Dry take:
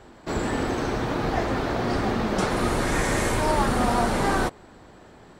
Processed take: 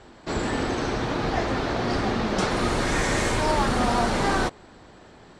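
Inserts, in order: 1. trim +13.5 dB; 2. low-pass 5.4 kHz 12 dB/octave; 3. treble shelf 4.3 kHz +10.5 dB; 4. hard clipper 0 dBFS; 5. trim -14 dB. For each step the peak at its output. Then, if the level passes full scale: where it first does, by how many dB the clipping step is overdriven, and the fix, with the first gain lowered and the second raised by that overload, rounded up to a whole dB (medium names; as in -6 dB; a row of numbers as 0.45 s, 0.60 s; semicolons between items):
+3.5 dBFS, +3.0 dBFS, +4.5 dBFS, 0.0 dBFS, -14.0 dBFS; step 1, 4.5 dB; step 1 +8.5 dB, step 5 -9 dB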